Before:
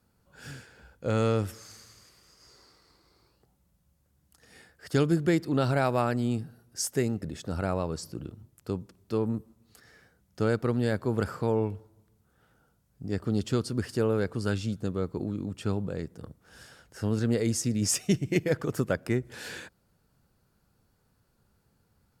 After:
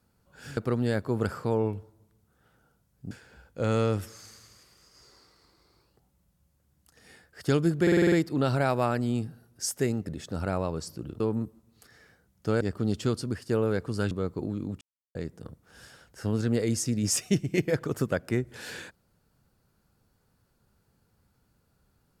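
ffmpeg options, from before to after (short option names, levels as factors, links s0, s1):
-filter_complex "[0:a]asplit=15[s0][s1][s2][s3][s4][s5][s6][s7][s8][s9][s10][s11][s12][s13][s14];[s0]atrim=end=0.572[s15];[s1]atrim=start=10.538:end=13.082[s16];[s2]atrim=start=0.568:end=5.332[s17];[s3]atrim=start=5.278:end=5.332[s18];[s4]atrim=start=5.278:end=5.332[s19];[s5]atrim=start=5.278:end=5.332[s20];[s6]atrim=start=5.278:end=5.332[s21];[s7]atrim=start=5.278:end=5.332[s22];[s8]atrim=start=5.278:end=8.362[s23];[s9]atrim=start=9.128:end=10.542[s24];[s10]atrim=start=13.078:end=13.96,asetpts=PTS-STARTPTS,afade=t=out:st=0.622:d=0.26:silence=0.375837[s25];[s11]atrim=start=13.96:end=14.582,asetpts=PTS-STARTPTS,afade=t=in:d=0.004:c=hsin:silence=0.375837[s26];[s12]atrim=start=14.888:end=15.59,asetpts=PTS-STARTPTS,afade=t=out:st=0.698:d=0.004:c=hsin[s27];[s13]atrim=start=15.59:end=15.93,asetpts=PTS-STARTPTS,volume=0[s28];[s14]atrim=start=15.93,asetpts=PTS-STARTPTS,afade=t=in:d=0.004:c=hsin[s29];[s15][s16]acrossfade=d=0.004:c1=hsin:c2=hsin[s30];[s30][s17]acrossfade=d=0.004:c1=hsin:c2=hsin[s31];[s31][s18]acrossfade=d=0.004:c1=hsin:c2=hsin[s32];[s32][s19]acrossfade=d=0.004:c1=hsin:c2=hsin[s33];[s33][s20]acrossfade=d=0.004:c1=hsin:c2=hsin[s34];[s34][s21]acrossfade=d=0.004:c1=hsin:c2=hsin[s35];[s35][s22]acrossfade=d=0.004:c1=hsin:c2=hsin[s36];[s36][s23]acrossfade=d=0.004:c1=hsin:c2=hsin[s37];[s37][s24]acrossfade=d=0.004:c1=hsin:c2=hsin[s38];[s25][s26]concat=n=2:v=0:a=1[s39];[s38][s39]acrossfade=d=0.004:c1=hsin:c2=hsin[s40];[s27][s28][s29]concat=n=3:v=0:a=1[s41];[s40][s41]acrossfade=d=0.004:c1=hsin:c2=hsin"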